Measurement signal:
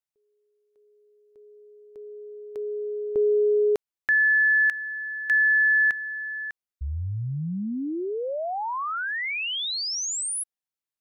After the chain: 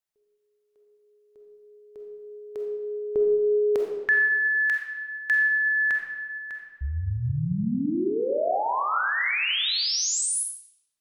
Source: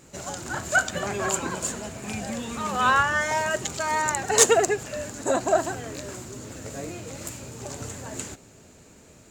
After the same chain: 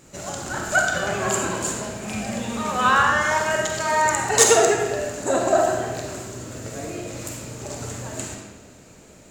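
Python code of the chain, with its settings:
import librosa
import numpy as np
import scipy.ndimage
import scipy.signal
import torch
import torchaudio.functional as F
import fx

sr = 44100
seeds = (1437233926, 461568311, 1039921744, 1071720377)

y = fx.rev_freeverb(x, sr, rt60_s=1.3, hf_ratio=0.8, predelay_ms=5, drr_db=0.5)
y = y * 10.0 ** (1.0 / 20.0)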